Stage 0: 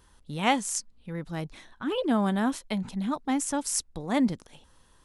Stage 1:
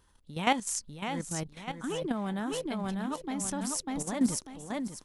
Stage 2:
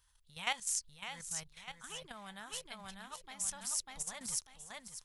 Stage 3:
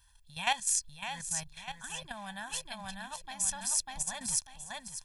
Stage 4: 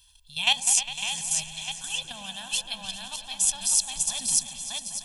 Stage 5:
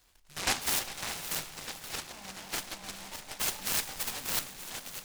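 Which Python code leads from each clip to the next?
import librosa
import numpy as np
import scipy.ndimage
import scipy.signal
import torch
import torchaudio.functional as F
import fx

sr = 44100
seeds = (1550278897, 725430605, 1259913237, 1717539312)

y1 = fx.echo_feedback(x, sr, ms=596, feedback_pct=35, wet_db=-4.0)
y1 = fx.level_steps(y1, sr, step_db=11)
y2 = fx.tone_stack(y1, sr, knobs='10-0-10')
y2 = F.gain(torch.from_numpy(y2), -1.0).numpy()
y3 = y2 + 0.81 * np.pad(y2, (int(1.2 * sr / 1000.0), 0))[:len(y2)]
y3 = F.gain(torch.from_numpy(y3), 4.0).numpy()
y4 = fx.high_shelf_res(y3, sr, hz=2300.0, db=7.5, q=3.0)
y4 = fx.echo_opening(y4, sr, ms=101, hz=400, octaves=2, feedback_pct=70, wet_db=-6)
y5 = fx.room_shoebox(y4, sr, seeds[0], volume_m3=300.0, walls='mixed', distance_m=0.48)
y5 = fx.noise_mod_delay(y5, sr, seeds[1], noise_hz=1300.0, depth_ms=0.12)
y5 = F.gain(torch.from_numpy(y5), -7.5).numpy()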